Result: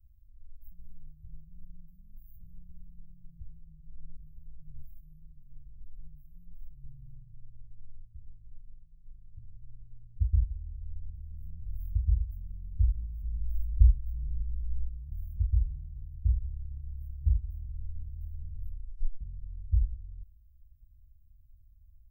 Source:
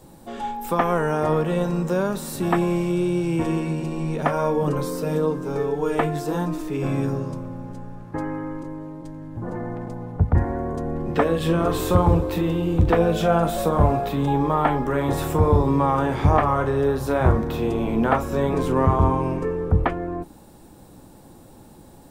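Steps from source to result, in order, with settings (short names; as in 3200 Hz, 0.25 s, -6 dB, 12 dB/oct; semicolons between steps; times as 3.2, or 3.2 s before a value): inverse Chebyshev band-stop 370–7100 Hz, stop band 80 dB; 13.23–14.88 low shelf 73 Hz +9.5 dB; 18.61 tape stop 0.60 s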